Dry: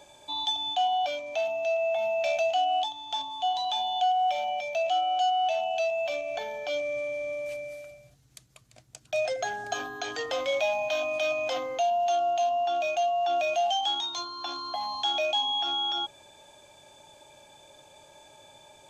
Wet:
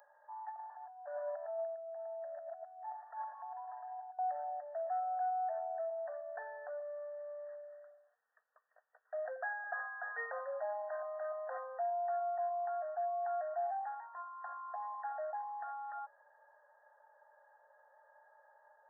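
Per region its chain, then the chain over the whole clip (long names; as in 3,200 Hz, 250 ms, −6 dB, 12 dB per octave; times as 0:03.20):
0:00.59–0:04.19: compressor whose output falls as the input rises −33 dBFS, ratio −0.5 + comb filter 3 ms, depth 33% + single-tap delay 109 ms −3 dB
whole clip: brick-wall band-pass 440–1,900 Hz; first difference; level +9.5 dB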